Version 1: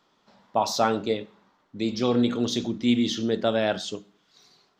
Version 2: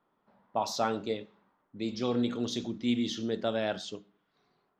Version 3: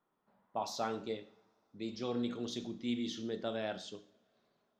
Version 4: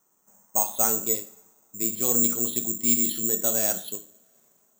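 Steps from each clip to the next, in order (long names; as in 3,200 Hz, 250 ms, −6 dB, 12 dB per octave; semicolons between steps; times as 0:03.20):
low-pass that shuts in the quiet parts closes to 1,600 Hz, open at −22 dBFS; level −7 dB
coupled-rooms reverb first 0.56 s, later 4 s, from −28 dB, DRR 11 dB; level −7 dB
bad sample-rate conversion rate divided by 6×, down filtered, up zero stuff; level +6 dB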